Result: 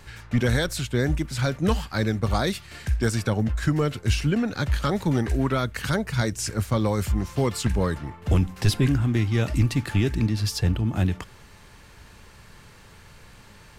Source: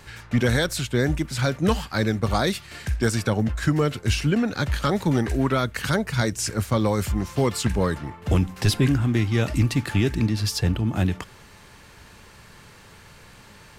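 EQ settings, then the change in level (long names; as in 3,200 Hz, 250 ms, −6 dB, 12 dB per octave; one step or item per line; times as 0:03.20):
low-shelf EQ 71 Hz +8 dB
−2.5 dB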